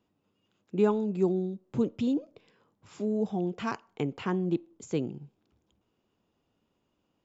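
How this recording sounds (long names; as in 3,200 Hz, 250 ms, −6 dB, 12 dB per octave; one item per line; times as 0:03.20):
background noise floor −78 dBFS
spectral slope −6.5 dB per octave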